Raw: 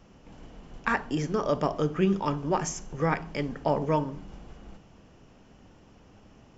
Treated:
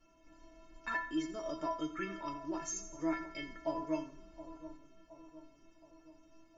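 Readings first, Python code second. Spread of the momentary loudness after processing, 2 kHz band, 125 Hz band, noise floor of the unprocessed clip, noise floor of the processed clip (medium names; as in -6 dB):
18 LU, -8.0 dB, -23.5 dB, -56 dBFS, -65 dBFS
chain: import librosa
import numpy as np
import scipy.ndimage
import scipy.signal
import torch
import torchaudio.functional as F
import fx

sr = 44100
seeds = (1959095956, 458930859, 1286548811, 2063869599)

y = fx.spec_box(x, sr, start_s=1.96, length_s=0.29, low_hz=1100.0, high_hz=2400.0, gain_db=11)
y = fx.stiff_resonator(y, sr, f0_hz=320.0, decay_s=0.43, stiffness=0.008)
y = fx.echo_split(y, sr, split_hz=1100.0, low_ms=720, high_ms=84, feedback_pct=52, wet_db=-14.5)
y = y * 10.0 ** (8.0 / 20.0)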